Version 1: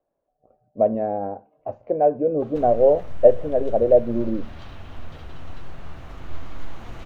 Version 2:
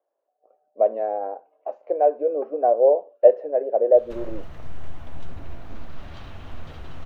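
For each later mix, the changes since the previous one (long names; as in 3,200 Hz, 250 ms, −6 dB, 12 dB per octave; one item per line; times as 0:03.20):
speech: add high-pass filter 400 Hz 24 dB per octave
background: entry +1.55 s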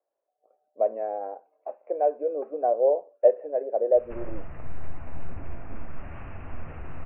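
speech −5.0 dB
master: add Butterworth low-pass 2,700 Hz 96 dB per octave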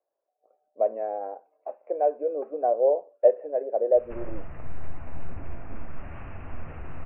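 nothing changed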